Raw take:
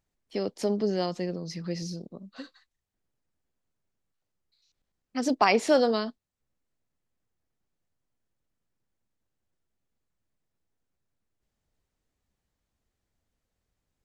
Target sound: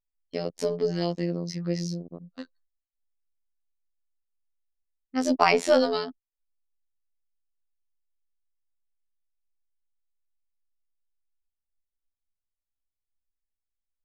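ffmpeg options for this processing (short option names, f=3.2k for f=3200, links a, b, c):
-af "aeval=exprs='0.398*(cos(1*acos(clip(val(0)/0.398,-1,1)))-cos(1*PI/2))+0.00398*(cos(6*acos(clip(val(0)/0.398,-1,1)))-cos(6*PI/2))':c=same,afftfilt=real='hypot(re,im)*cos(PI*b)':imag='0':win_size=2048:overlap=0.75,anlmdn=0.0251,volume=5dB"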